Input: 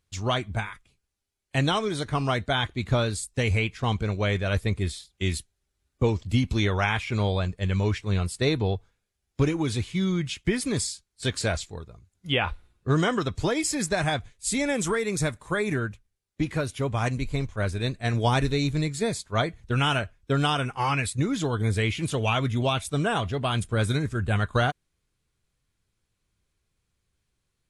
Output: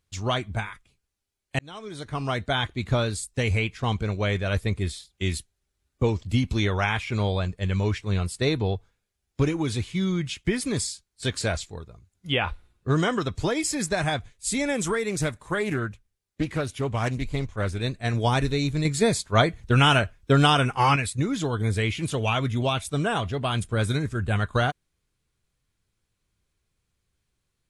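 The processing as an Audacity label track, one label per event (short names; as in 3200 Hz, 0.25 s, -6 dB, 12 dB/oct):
1.590000	2.490000	fade in
15.100000	17.810000	Doppler distortion depth 0.29 ms
18.850000	20.960000	gain +5.5 dB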